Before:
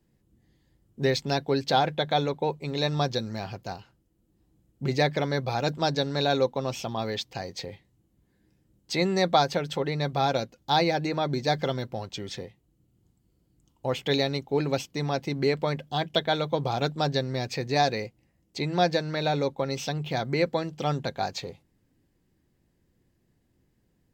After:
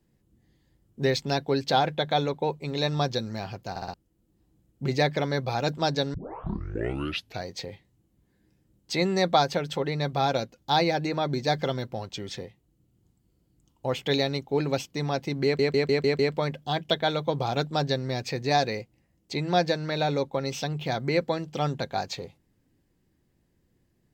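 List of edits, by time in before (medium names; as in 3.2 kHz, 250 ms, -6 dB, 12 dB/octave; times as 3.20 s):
3.70 s: stutter in place 0.06 s, 4 plays
6.14 s: tape start 1.33 s
15.44 s: stutter 0.15 s, 6 plays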